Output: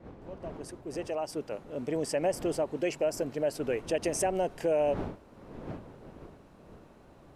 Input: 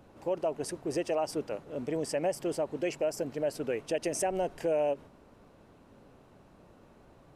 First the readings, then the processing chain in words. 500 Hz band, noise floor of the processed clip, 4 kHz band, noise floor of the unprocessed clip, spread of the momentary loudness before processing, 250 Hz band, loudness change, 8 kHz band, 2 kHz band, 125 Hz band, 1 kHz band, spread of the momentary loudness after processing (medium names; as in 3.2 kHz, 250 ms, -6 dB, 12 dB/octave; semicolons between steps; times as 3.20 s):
+0.5 dB, -56 dBFS, +0.5 dB, -59 dBFS, 5 LU, +1.0 dB, +0.5 dB, +1.0 dB, +1.0 dB, +2.5 dB, +0.5 dB, 17 LU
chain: fade-in on the opening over 2.04 s; wind noise 440 Hz -48 dBFS; trim +1.5 dB